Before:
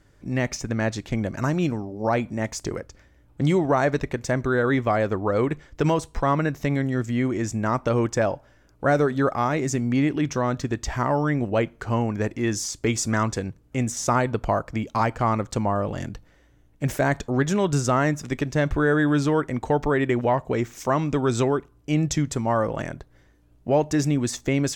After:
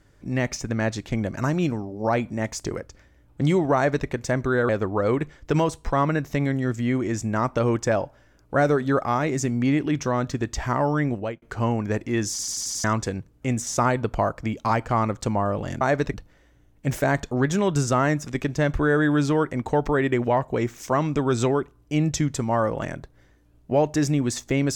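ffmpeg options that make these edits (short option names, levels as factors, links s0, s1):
-filter_complex "[0:a]asplit=11[s0][s1][s2][s3][s4][s5][s6][s7][s8][s9][s10];[s0]atrim=end=4.692[s11];[s1]atrim=start=4.988:end=11.72,asetpts=PTS-STARTPTS,afade=t=out:st=6.392:d=0.34[s12];[s2]atrim=start=11.72:end=12.692,asetpts=PTS-STARTPTS,afade=t=in:d=0.004:c=hsin[s13];[s3]atrim=start=12.598:end=12.692[s14];[s4]atrim=start=12.598:end=12.692[s15];[s5]atrim=start=12.598:end=12.692[s16];[s6]atrim=start=12.598:end=12.692[s17];[s7]atrim=start=12.598:end=12.692[s18];[s8]atrim=start=13.138:end=16.112[s19];[s9]atrim=start=3.748:end=4.082[s20];[s10]atrim=start=16.108[s21];[s12][s13]concat=n=2:v=0:a=1[s22];[s11][s22]acrossfade=d=0.004:c1=hsin:c2=hsin[s23];[s23][s14]acrossfade=d=0.004:c1=hsin:c2=hsin[s24];[s24][s15]acrossfade=d=0.004:c1=hsin:c2=hsin[s25];[s25][s16]acrossfade=d=0.004:c1=hsin:c2=hsin[s26];[s26][s17]acrossfade=d=0.004:c1=hsin:c2=hsin[s27];[s27][s18]acrossfade=d=0.004:c1=hsin:c2=hsin[s28];[s28][s19]acrossfade=d=0.004:c1=hsin:c2=hsin[s29];[s29][s20]acrossfade=d=0.004:c1=hsin:c2=hsin[s30];[s30][s21]acrossfade=d=0.004:c1=hsin:c2=hsin"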